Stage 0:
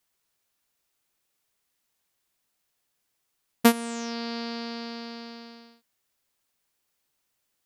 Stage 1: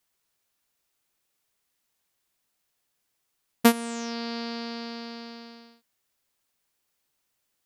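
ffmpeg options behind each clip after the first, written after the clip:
ffmpeg -i in.wav -af anull out.wav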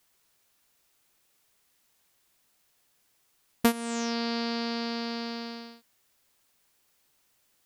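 ffmpeg -i in.wav -af "acompressor=threshold=-38dB:ratio=2,volume=7.5dB" out.wav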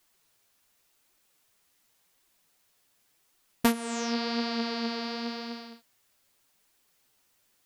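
ffmpeg -i in.wav -af "flanger=delay=2.5:depth=9.6:regen=43:speed=0.89:shape=triangular,volume=4dB" out.wav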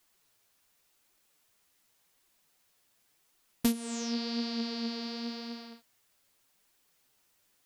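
ffmpeg -i in.wav -filter_complex "[0:a]acrossover=split=420|3000[link_01][link_02][link_03];[link_02]acompressor=threshold=-47dB:ratio=3[link_04];[link_01][link_04][link_03]amix=inputs=3:normalize=0,volume=-1.5dB" out.wav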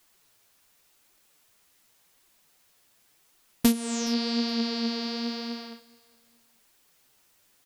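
ffmpeg -i in.wav -af "aecho=1:1:418|836:0.0631|0.0202,volume=6.5dB" out.wav

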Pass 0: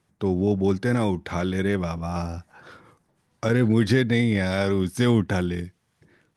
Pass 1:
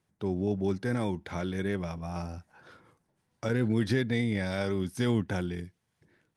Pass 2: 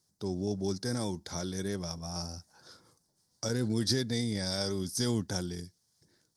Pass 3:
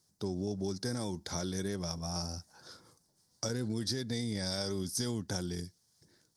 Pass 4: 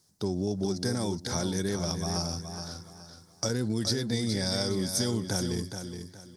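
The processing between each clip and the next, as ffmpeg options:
ffmpeg -i in.wav -af "bandreject=frequency=1200:width=16,volume=-7.5dB" out.wav
ffmpeg -i in.wav -af "highshelf=frequency=3600:width_type=q:width=3:gain=12,volume=-3.5dB" out.wav
ffmpeg -i in.wav -af "acompressor=threshold=-33dB:ratio=6,volume=2dB" out.wav
ffmpeg -i in.wav -af "aecho=1:1:420|840|1260|1680:0.398|0.119|0.0358|0.0107,volume=5.5dB" out.wav

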